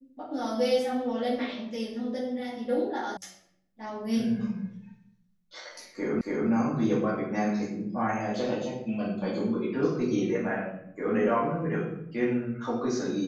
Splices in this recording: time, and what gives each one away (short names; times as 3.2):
3.17 sound cut off
6.21 repeat of the last 0.28 s